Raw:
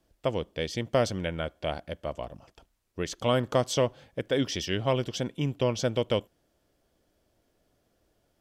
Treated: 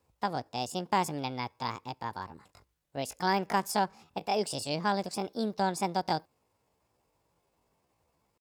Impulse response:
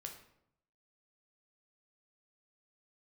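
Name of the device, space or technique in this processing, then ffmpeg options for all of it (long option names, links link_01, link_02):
chipmunk voice: -af "asetrate=68011,aresample=44100,atempo=0.64842,highpass=47,volume=-3dB"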